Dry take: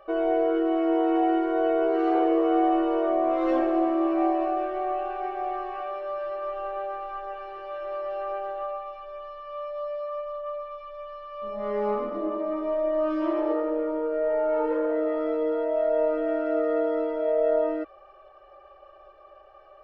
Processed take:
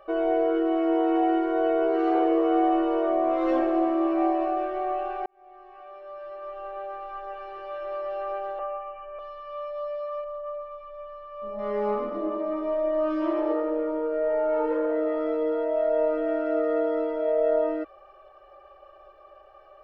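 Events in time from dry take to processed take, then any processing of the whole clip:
5.26–7.62 s: fade in
8.59–9.19 s: steep low-pass 3 kHz 96 dB/octave
10.24–11.59 s: treble shelf 2.4 kHz -12 dB

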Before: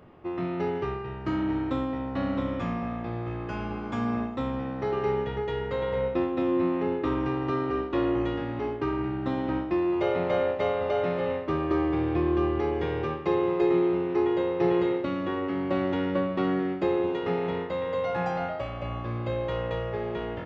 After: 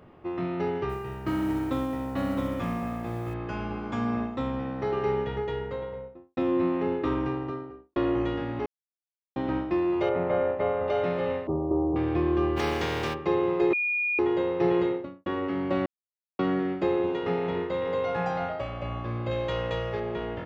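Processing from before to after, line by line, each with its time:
0.89–3.34 s: modulation noise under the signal 29 dB
5.33–6.37 s: studio fade out
7.11–7.96 s: studio fade out
8.66–9.36 s: mute
10.09–10.88 s: low-pass 1.9 kHz
11.47–11.96 s: steep low-pass 950 Hz 48 dB/octave
12.56–13.13 s: spectral contrast reduction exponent 0.53
13.73–14.19 s: bleep 2.44 kHz -24 dBFS
14.80–15.26 s: studio fade out
15.86–16.39 s: mute
16.96–17.93 s: echo throw 590 ms, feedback 10%, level -11 dB
19.31–20.00 s: treble shelf 3.3 kHz +11 dB

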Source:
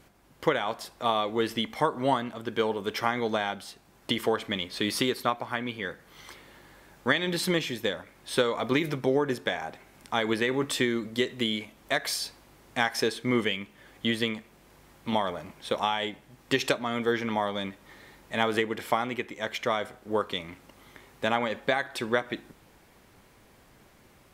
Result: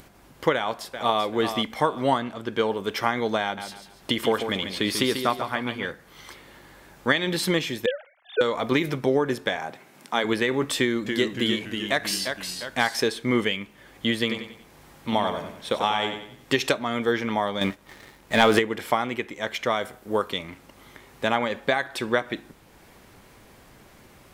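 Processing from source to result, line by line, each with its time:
0.54–1.23 s: echo throw 390 ms, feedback 30%, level -8.5 dB
2.18–2.69 s: treble shelf 12 kHz -8.5 dB
3.43–5.91 s: feedback delay 142 ms, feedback 34%, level -8 dB
7.86–8.41 s: formants replaced by sine waves
9.56–10.23 s: high-pass 85 Hz -> 190 Hz 24 dB/octave
10.78–12.96 s: ever faster or slower copies 282 ms, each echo -1 st, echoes 3, each echo -6 dB
14.20–16.57 s: feedback delay 93 ms, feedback 39%, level -7.5 dB
17.61–18.59 s: waveshaping leveller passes 2
19.76–20.31 s: treble shelf 9.2 kHz +9 dB
whole clip: upward compressor, threshold -48 dBFS; trim +3 dB

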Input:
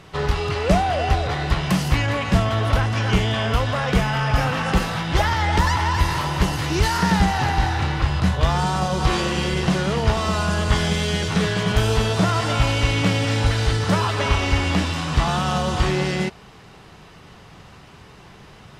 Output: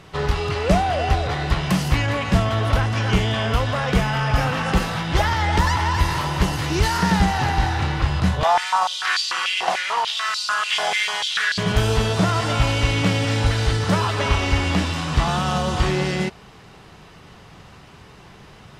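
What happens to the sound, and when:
8.43–11.58 s: step-sequenced high-pass 6.8 Hz 750–4400 Hz

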